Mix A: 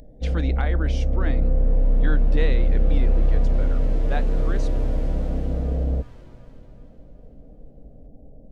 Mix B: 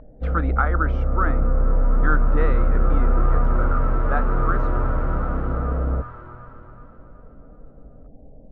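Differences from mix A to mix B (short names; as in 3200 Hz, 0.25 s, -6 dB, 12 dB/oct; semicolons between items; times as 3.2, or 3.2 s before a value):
speech: remove air absorption 72 m; second sound +6.5 dB; master: add synth low-pass 1300 Hz, resonance Q 9.9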